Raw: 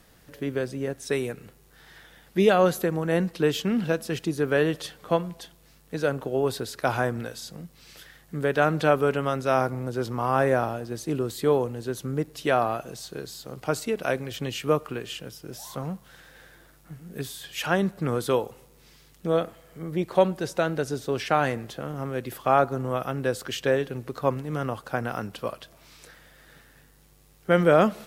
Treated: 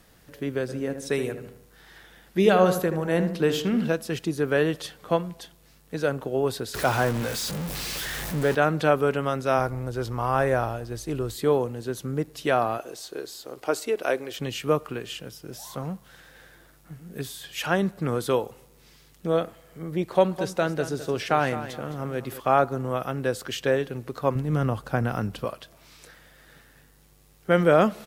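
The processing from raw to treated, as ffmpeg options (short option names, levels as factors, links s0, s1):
-filter_complex "[0:a]asplit=3[s0][s1][s2];[s0]afade=t=out:st=0.68:d=0.02[s3];[s1]asplit=2[s4][s5];[s5]adelay=77,lowpass=f=1800:p=1,volume=0.398,asplit=2[s6][s7];[s7]adelay=77,lowpass=f=1800:p=1,volume=0.49,asplit=2[s8][s9];[s9]adelay=77,lowpass=f=1800:p=1,volume=0.49,asplit=2[s10][s11];[s11]adelay=77,lowpass=f=1800:p=1,volume=0.49,asplit=2[s12][s13];[s13]adelay=77,lowpass=f=1800:p=1,volume=0.49,asplit=2[s14][s15];[s15]adelay=77,lowpass=f=1800:p=1,volume=0.49[s16];[s4][s6][s8][s10][s12][s14][s16]amix=inputs=7:normalize=0,afade=t=in:st=0.68:d=0.02,afade=t=out:st=3.87:d=0.02[s17];[s2]afade=t=in:st=3.87:d=0.02[s18];[s3][s17][s18]amix=inputs=3:normalize=0,asettb=1/sr,asplit=3[s19][s20][s21];[s19]atrim=end=6.744[s22];[s20]atrim=start=6.74:end=8.55,asetpts=PTS-STARTPTS,afade=t=in:d=0.004:c=qsin,afade=t=out:st=1.806:d=0.004:c=qsin,aeval=exprs='val(0)+0.5*0.0447*sgn(val(0))':c=same[s23];[s21]atrim=start=8.546[s24];[s22][s23]acrossfade=d=0.004:c1=hsin:c2=qsin[s25];[s25][s24]acrossfade=d=0.004:c1=qsin:c2=hsin,asplit=3[s26][s27][s28];[s26]afade=t=out:st=9.57:d=0.02[s29];[s27]asubboost=boost=8:cutoff=64,afade=t=in:st=9.57:d=0.02,afade=t=out:st=11.34:d=0.02[s30];[s28]afade=t=in:st=11.34:d=0.02[s31];[s29][s30][s31]amix=inputs=3:normalize=0,asettb=1/sr,asplit=3[s32][s33][s34];[s32]atrim=end=12.784[s35];[s33]atrim=start=12.78:end=14.39,asetpts=PTS-STARTPTS,afade=t=in:d=0.004:c=qsin,afade=t=out:st=1.606:d=0.004:c=qsin,lowshelf=f=240:t=q:w=1.5:g=-11[s36];[s34]atrim=start=14.386[s37];[s35][s36]acrossfade=d=0.004:c1=hsin:c2=qsin[s38];[s38][s37]acrossfade=d=0.004:c1=qsin:c2=hsin,asettb=1/sr,asplit=3[s39][s40][s41];[s39]atrim=end=20.044[s42];[s40]atrim=start=20.04:end=22.4,asetpts=PTS-STARTPTS,afade=t=in:d=0.004:c=qsin,afade=t=out:st=2.356:d=0.004:c=qsin,aecho=1:1:211|422|633:0.237|0.064|0.0173,atrim=end_sample=104076[s43];[s41]atrim=start=22.396[s44];[s42][s43]acrossfade=d=0.004:c1=hsin:c2=qsin[s45];[s45][s44]acrossfade=d=0.004:c1=qsin:c2=hsin,asettb=1/sr,asplit=3[s46][s47][s48];[s46]atrim=end=24.354[s49];[s47]atrim=start=24.35:end=25.45,asetpts=PTS-STARTPTS,afade=t=in:d=0.004:c=qsin,afade=t=out:st=1.096:d=0.004:c=qsin,lowshelf=f=200:g=11.5[s50];[s48]atrim=start=25.446[s51];[s49][s50]acrossfade=d=0.004:c1=hsin:c2=qsin[s52];[s52][s51]acrossfade=d=0.004:c1=qsin:c2=hsin"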